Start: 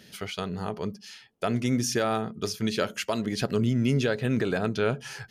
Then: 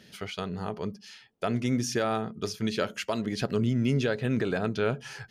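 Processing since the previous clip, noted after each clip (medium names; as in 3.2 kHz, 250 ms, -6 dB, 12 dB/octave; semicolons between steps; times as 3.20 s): treble shelf 8.1 kHz -7.5 dB; trim -1.5 dB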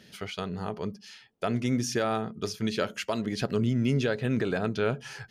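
no audible change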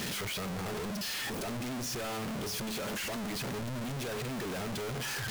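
one-bit comparator; trim -6.5 dB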